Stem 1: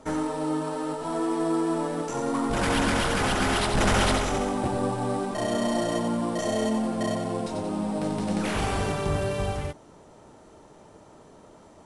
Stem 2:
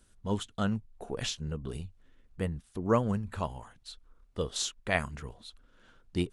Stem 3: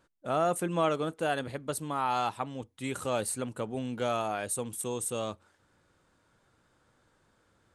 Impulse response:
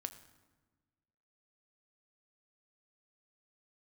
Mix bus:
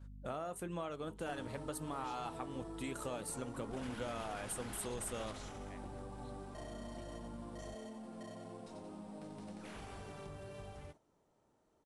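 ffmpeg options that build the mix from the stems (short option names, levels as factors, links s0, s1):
-filter_complex "[0:a]acompressor=threshold=0.0398:ratio=6,adelay=1200,volume=0.224[s0];[1:a]acompressor=threshold=0.0224:ratio=6,adelay=800,volume=0.15[s1];[2:a]aeval=exprs='val(0)+0.00398*(sin(2*PI*50*n/s)+sin(2*PI*2*50*n/s)/2+sin(2*PI*3*50*n/s)/3+sin(2*PI*4*50*n/s)/4+sin(2*PI*5*50*n/s)/5)':c=same,acompressor=threshold=0.0141:ratio=6,volume=1.26[s2];[s0][s1][s2]amix=inputs=3:normalize=0,agate=range=0.447:threshold=0.00224:ratio=16:detection=peak,flanger=delay=1.2:depth=8.6:regen=-79:speed=1:shape=triangular"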